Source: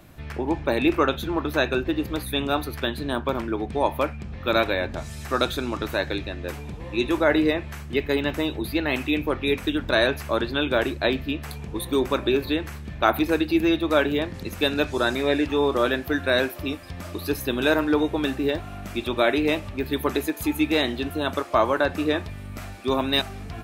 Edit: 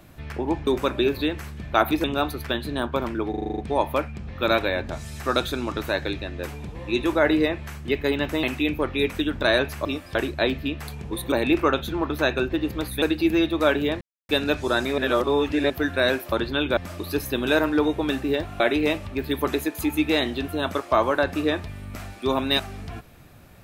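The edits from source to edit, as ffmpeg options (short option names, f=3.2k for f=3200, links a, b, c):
-filter_complex "[0:a]asplit=22[a][b][c][d][e][f][g][h][i][j][k][l][m][n][o][p][q][r][s][t][u][v];[a]atrim=end=0.672[w];[b]atrim=start=11.948:end=13.322[x];[c]atrim=start=2.368:end=3.672[y];[d]atrim=start=3.628:end=3.672[z];[e]atrim=start=3.628:end=3.672[aa];[f]atrim=start=3.628:end=3.672[ab];[g]atrim=start=3.628:end=3.672[ac];[h]atrim=start=3.628:end=3.672[ad];[i]atrim=start=3.628:end=3.672[ae];[j]atrim=start=3.628:end=8.482[af];[k]atrim=start=8.908:end=10.332[ag];[l]atrim=start=16.618:end=16.922[ah];[m]atrim=start=10.778:end=11.952[ai];[n]atrim=start=0.668:end=2.372[aj];[o]atrim=start=13.318:end=14.31,asetpts=PTS-STARTPTS,afade=t=out:st=0.988:d=0.004:c=hsin[ak];[p]atrim=start=14.31:end=14.59,asetpts=PTS-STARTPTS,volume=0[al];[q]atrim=start=14.59:end=15.282,asetpts=PTS-STARTPTS,afade=t=in:d=0.004:c=hsin[am];[r]atrim=start=15.278:end=16.002,asetpts=PTS-STARTPTS,areverse[an];[s]atrim=start=15.998:end=16.622[ao];[t]atrim=start=10.328:end=10.782[ap];[u]atrim=start=16.918:end=18.752[aq];[v]atrim=start=19.218[ar];[w][x]acrossfade=d=0.004:c1=hsin:c2=hsin[as];[as][y]acrossfade=d=0.004:c1=hsin:c2=hsin[at];[at][z]acrossfade=d=0.004:c1=hsin:c2=hsin[au];[au][aa]acrossfade=d=0.004:c1=hsin:c2=hsin[av];[av][ab]acrossfade=d=0.004:c1=hsin:c2=hsin[aw];[aw][ac]acrossfade=d=0.004:c1=hsin:c2=hsin[ax];[ax][ad]acrossfade=d=0.004:c1=hsin:c2=hsin[ay];[ay][ae]acrossfade=d=0.004:c1=hsin:c2=hsin[az];[az][af]acrossfade=d=0.004:c1=hsin:c2=hsin[ba];[ba][ag]acrossfade=d=0.004:c1=hsin:c2=hsin[bb];[bb][ah]acrossfade=d=0.004:c1=hsin:c2=hsin[bc];[bc][ai]acrossfade=d=0.004:c1=hsin:c2=hsin[bd];[bd][aj]acrossfade=d=0.004:c1=hsin:c2=hsin[be];[ak][al][am]concat=n=3:v=0:a=1[bf];[be][bf]acrossfade=d=0.004:c1=hsin:c2=hsin[bg];[bg][an]acrossfade=d=0.004:c1=hsin:c2=hsin[bh];[bh][ao]acrossfade=d=0.004:c1=hsin:c2=hsin[bi];[bi][ap]acrossfade=d=0.004:c1=hsin:c2=hsin[bj];[bj][aq]acrossfade=d=0.004:c1=hsin:c2=hsin[bk];[bk][ar]acrossfade=d=0.004:c1=hsin:c2=hsin"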